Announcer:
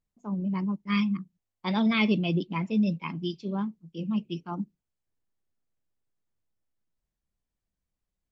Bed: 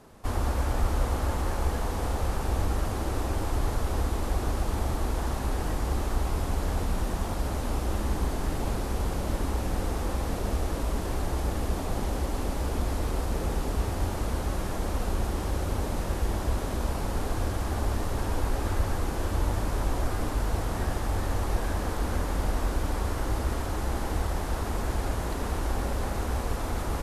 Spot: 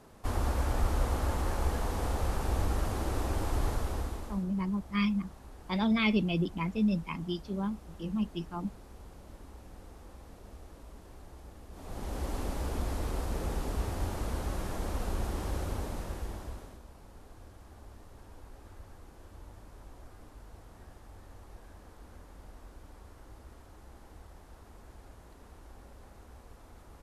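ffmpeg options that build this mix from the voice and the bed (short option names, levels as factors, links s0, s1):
-filter_complex "[0:a]adelay=4050,volume=0.708[s0];[1:a]volume=4.47,afade=t=out:st=3.67:d=0.79:silence=0.125893,afade=t=in:st=11.71:d=0.59:silence=0.158489,afade=t=out:st=15.58:d=1.24:silence=0.125893[s1];[s0][s1]amix=inputs=2:normalize=0"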